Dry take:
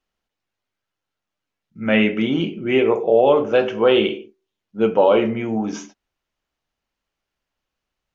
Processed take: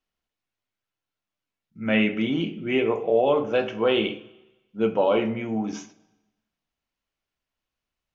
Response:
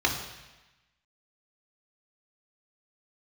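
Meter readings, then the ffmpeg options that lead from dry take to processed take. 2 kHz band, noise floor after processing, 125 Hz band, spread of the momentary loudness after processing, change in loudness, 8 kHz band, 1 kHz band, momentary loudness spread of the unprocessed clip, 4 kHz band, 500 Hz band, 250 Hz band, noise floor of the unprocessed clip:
-4.5 dB, under -85 dBFS, -4.5 dB, 12 LU, -5.5 dB, n/a, -6.0 dB, 10 LU, -4.5 dB, -6.5 dB, -4.5 dB, -83 dBFS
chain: -filter_complex "[0:a]asplit=2[a][b];[1:a]atrim=start_sample=2205[c];[b][c]afir=irnorm=-1:irlink=0,volume=-24dB[d];[a][d]amix=inputs=2:normalize=0,volume=-5.5dB"

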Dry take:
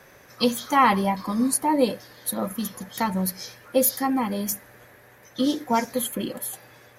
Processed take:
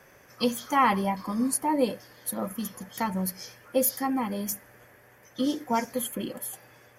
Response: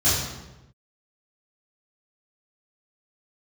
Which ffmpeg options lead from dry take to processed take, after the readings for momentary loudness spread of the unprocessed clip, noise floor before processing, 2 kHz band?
13 LU, -52 dBFS, -4.0 dB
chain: -af "bandreject=f=3.9k:w=5.3,volume=-4dB"

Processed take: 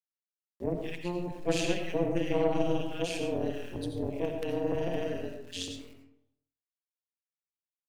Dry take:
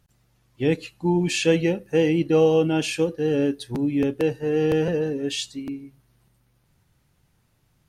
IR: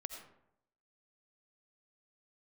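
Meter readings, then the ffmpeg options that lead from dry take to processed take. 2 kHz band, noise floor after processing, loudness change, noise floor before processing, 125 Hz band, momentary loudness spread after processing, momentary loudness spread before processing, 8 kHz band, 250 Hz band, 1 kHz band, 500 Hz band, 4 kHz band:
-9.5 dB, under -85 dBFS, -10.0 dB, -66 dBFS, -10.5 dB, 10 LU, 9 LU, -9.0 dB, -11.0 dB, -5.0 dB, -10.0 dB, -8.5 dB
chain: -filter_complex "[0:a]acrossover=split=210|1200[a][b][c];[a]adelay=30[d];[c]adelay=220[e];[d][b][e]amix=inputs=3:normalize=0,aeval=exprs='0.376*(cos(1*acos(clip(val(0)/0.376,-1,1)))-cos(1*PI/2))+0.0531*(cos(4*acos(clip(val(0)/0.376,-1,1)))-cos(4*PI/2))+0.0188*(cos(5*acos(clip(val(0)/0.376,-1,1)))-cos(5*PI/2))+0.0106*(cos(6*acos(clip(val(0)/0.376,-1,1)))-cos(6*PI/2))+0.0119*(cos(7*acos(clip(val(0)/0.376,-1,1)))-cos(7*PI/2))':c=same,aeval=exprs='val(0)*gte(abs(val(0)),0.00531)':c=same,tremolo=f=180:d=1[f];[1:a]atrim=start_sample=2205[g];[f][g]afir=irnorm=-1:irlink=0,volume=-2.5dB"

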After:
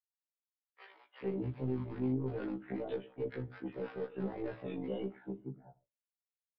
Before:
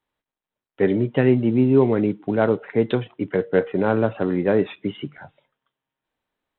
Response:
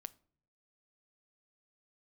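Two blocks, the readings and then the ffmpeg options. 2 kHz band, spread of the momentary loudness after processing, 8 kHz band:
-21.5 dB, 10 LU, n/a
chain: -filter_complex "[0:a]agate=range=-33dB:threshold=-44dB:ratio=3:detection=peak,highshelf=f=2.9k:g=-8.5,alimiter=limit=-15.5dB:level=0:latency=1:release=227,flanger=delay=5.2:depth=2.3:regen=71:speed=1.3:shape=sinusoidal,aresample=16000,volume=25dB,asoftclip=hard,volume=-25dB,aresample=44100,tremolo=f=50:d=0.519,acrossover=split=960[a][b];[a]adelay=440[c];[c][b]amix=inputs=2:normalize=0[d];[1:a]atrim=start_sample=2205,atrim=end_sample=6174[e];[d][e]afir=irnorm=-1:irlink=0,aresample=11025,aresample=44100,afftfilt=real='re*1.73*eq(mod(b,3),0)':imag='im*1.73*eq(mod(b,3),0)':win_size=2048:overlap=0.75,volume=2.5dB"

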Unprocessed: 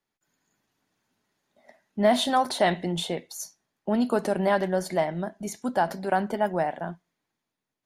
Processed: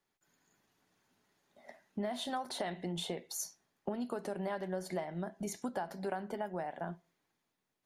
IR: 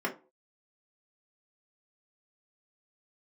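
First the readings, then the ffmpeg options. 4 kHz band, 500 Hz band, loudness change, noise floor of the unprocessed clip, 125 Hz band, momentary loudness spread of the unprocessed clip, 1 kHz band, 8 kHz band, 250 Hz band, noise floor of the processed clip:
-11.5 dB, -13.5 dB, -13.5 dB, -85 dBFS, -10.5 dB, 15 LU, -14.5 dB, -6.0 dB, -12.0 dB, -85 dBFS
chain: -filter_complex "[0:a]acompressor=threshold=-35dB:ratio=12,asplit=2[a][b];[1:a]atrim=start_sample=2205[c];[b][c]afir=irnorm=-1:irlink=0,volume=-22.5dB[d];[a][d]amix=inputs=2:normalize=0"

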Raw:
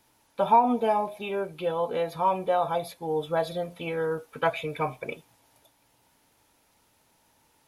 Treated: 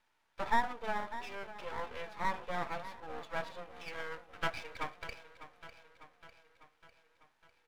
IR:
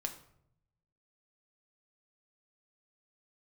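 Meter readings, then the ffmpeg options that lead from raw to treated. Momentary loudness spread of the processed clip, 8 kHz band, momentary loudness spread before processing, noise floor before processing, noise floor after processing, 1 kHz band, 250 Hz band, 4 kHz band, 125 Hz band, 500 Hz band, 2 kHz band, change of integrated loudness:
22 LU, -6.0 dB, 11 LU, -66 dBFS, -76 dBFS, -11.5 dB, -15.5 dB, -6.0 dB, -13.0 dB, -16.5 dB, -2.5 dB, -12.0 dB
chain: -af "bandpass=f=1.6k:t=q:w=1.4:csg=0,aecho=1:1:600|1200|1800|2400|3000|3600:0.211|0.123|0.0711|0.0412|0.0239|0.0139,aeval=exprs='max(val(0),0)':c=same"

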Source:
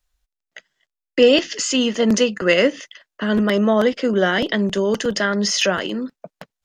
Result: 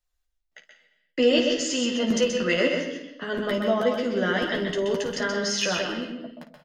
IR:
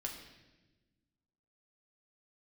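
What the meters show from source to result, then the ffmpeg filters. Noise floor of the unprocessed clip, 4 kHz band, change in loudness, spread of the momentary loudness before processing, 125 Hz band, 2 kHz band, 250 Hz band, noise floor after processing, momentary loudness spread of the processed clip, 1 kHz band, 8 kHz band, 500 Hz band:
-85 dBFS, -5.5 dB, -6.0 dB, 11 LU, -7.5 dB, -5.5 dB, -7.0 dB, -76 dBFS, 12 LU, -6.0 dB, -6.0 dB, -6.0 dB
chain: -filter_complex "[0:a]flanger=delay=5.7:depth=1.6:regen=-64:speed=0.51:shape=sinusoidal,aecho=1:1:12|54:0.562|0.237,asplit=2[a][b];[1:a]atrim=start_sample=2205,afade=t=out:st=0.45:d=0.01,atrim=end_sample=20286,adelay=127[c];[b][c]afir=irnorm=-1:irlink=0,volume=-2.5dB[d];[a][d]amix=inputs=2:normalize=0,volume=-4.5dB"

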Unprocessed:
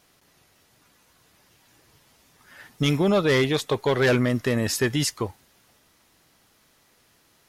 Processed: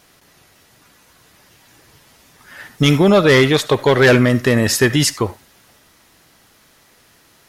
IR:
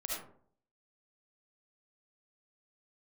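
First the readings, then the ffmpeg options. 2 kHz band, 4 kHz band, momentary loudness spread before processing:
+10.0 dB, +9.0 dB, 6 LU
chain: -filter_complex "[0:a]asplit=2[a][b];[b]equalizer=f=1.7k:w=1.5:g=10[c];[1:a]atrim=start_sample=2205,atrim=end_sample=4410[d];[c][d]afir=irnorm=-1:irlink=0,volume=-16.5dB[e];[a][e]amix=inputs=2:normalize=0,volume=8dB"

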